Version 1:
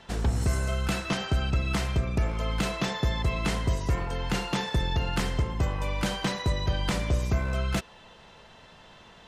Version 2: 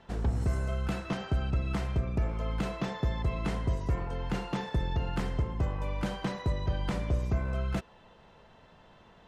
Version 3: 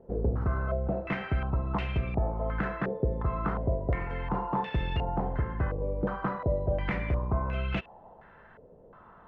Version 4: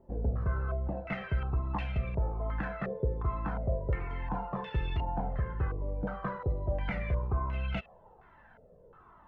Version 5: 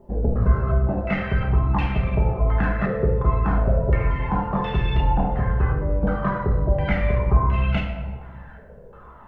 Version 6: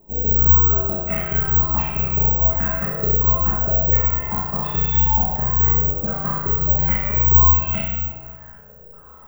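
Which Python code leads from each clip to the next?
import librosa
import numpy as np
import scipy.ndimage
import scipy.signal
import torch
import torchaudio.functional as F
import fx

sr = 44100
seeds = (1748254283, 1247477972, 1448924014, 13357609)

y1 = fx.high_shelf(x, sr, hz=2100.0, db=-11.5)
y1 = y1 * 10.0 ** (-3.0 / 20.0)
y2 = fx.filter_held_lowpass(y1, sr, hz=2.8, low_hz=480.0, high_hz=2700.0)
y3 = fx.comb_cascade(y2, sr, direction='falling', hz=1.2)
y4 = fx.room_shoebox(y3, sr, seeds[0], volume_m3=790.0, walls='mixed', distance_m=1.3)
y4 = y4 * 10.0 ** (9.0 / 20.0)
y5 = fx.room_flutter(y4, sr, wall_m=5.7, rt60_s=0.79)
y5 = (np.kron(y5[::2], np.eye(2)[0]) * 2)[:len(y5)]
y5 = y5 * 10.0 ** (-5.5 / 20.0)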